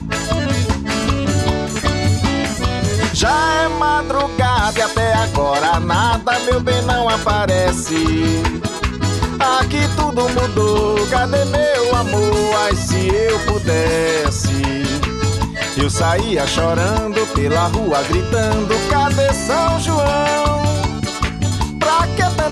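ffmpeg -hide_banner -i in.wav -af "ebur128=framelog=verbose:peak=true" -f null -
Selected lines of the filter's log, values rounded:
Integrated loudness:
  I:         -16.4 LUFS
  Threshold: -26.4 LUFS
Loudness range:
  LRA:         1.5 LU
  Threshold: -36.3 LUFS
  LRA low:   -17.1 LUFS
  LRA high:  -15.6 LUFS
True peak:
  Peak:       -4.3 dBFS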